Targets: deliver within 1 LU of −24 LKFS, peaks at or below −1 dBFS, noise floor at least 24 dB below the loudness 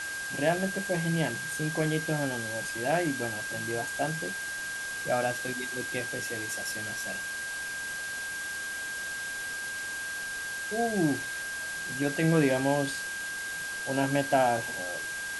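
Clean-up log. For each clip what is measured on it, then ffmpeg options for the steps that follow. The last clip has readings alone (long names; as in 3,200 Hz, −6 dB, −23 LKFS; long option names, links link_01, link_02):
interfering tone 1,600 Hz; level of the tone −34 dBFS; background noise floor −36 dBFS; target noise floor −55 dBFS; integrated loudness −30.5 LKFS; sample peak −12.5 dBFS; target loudness −24.0 LKFS
→ -af "bandreject=frequency=1600:width=30"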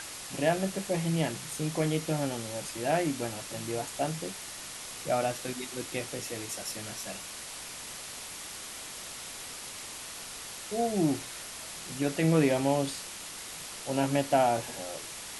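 interfering tone none found; background noise floor −42 dBFS; target noise floor −56 dBFS
→ -af "afftdn=noise_reduction=14:noise_floor=-42"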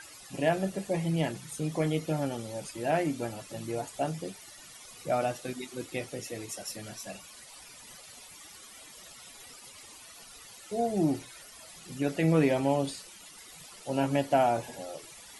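background noise floor −50 dBFS; target noise floor −55 dBFS
→ -af "afftdn=noise_reduction=6:noise_floor=-50"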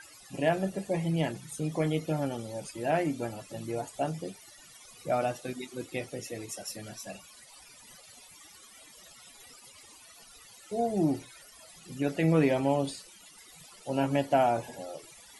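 background noise floor −54 dBFS; target noise floor −55 dBFS
→ -af "afftdn=noise_reduction=6:noise_floor=-54"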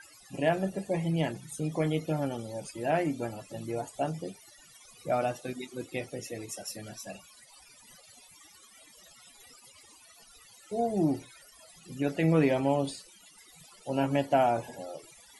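background noise floor −57 dBFS; integrated loudness −31.0 LKFS; sample peak −12.5 dBFS; target loudness −24.0 LKFS
→ -af "volume=7dB"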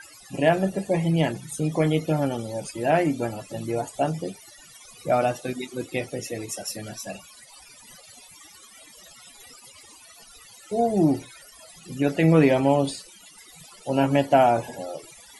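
integrated loudness −24.0 LKFS; sample peak −5.5 dBFS; background noise floor −50 dBFS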